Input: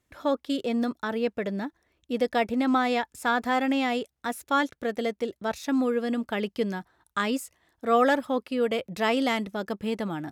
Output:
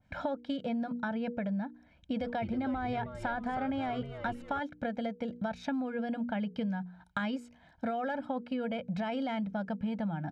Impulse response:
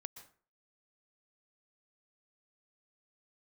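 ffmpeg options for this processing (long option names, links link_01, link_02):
-filter_complex "[0:a]lowpass=3400,equalizer=frequency=180:width=1.9:gain=8.5,bandreject=frequency=60:width_type=h:width=6,bandreject=frequency=120:width_type=h:width=6,bandreject=frequency=180:width_type=h:width=6,bandreject=frequency=240:width_type=h:width=6,bandreject=frequency=300:width_type=h:width=6,bandreject=frequency=360:width_type=h:width=6,bandreject=frequency=420:width_type=h:width=6,bandreject=frequency=480:width_type=h:width=6,aecho=1:1:1.3:0.88,alimiter=limit=-17dB:level=0:latency=1:release=12,acompressor=threshold=-36dB:ratio=6,asplit=3[link_01][link_02][link_03];[link_01]afade=type=out:start_time=2.2:duration=0.02[link_04];[link_02]asplit=6[link_05][link_06][link_07][link_08][link_09][link_10];[link_06]adelay=315,afreqshift=-140,volume=-10dB[link_11];[link_07]adelay=630,afreqshift=-280,volume=-16.7dB[link_12];[link_08]adelay=945,afreqshift=-420,volume=-23.5dB[link_13];[link_09]adelay=1260,afreqshift=-560,volume=-30.2dB[link_14];[link_10]adelay=1575,afreqshift=-700,volume=-37dB[link_15];[link_05][link_11][link_12][link_13][link_14][link_15]amix=inputs=6:normalize=0,afade=type=in:start_time=2.2:duration=0.02,afade=type=out:start_time=4.59:duration=0.02[link_16];[link_03]afade=type=in:start_time=4.59:duration=0.02[link_17];[link_04][link_16][link_17]amix=inputs=3:normalize=0,adynamicequalizer=threshold=0.002:dfrequency=1800:dqfactor=0.7:tfrequency=1800:tqfactor=0.7:attack=5:release=100:ratio=0.375:range=3:mode=cutabove:tftype=highshelf,volume=4dB"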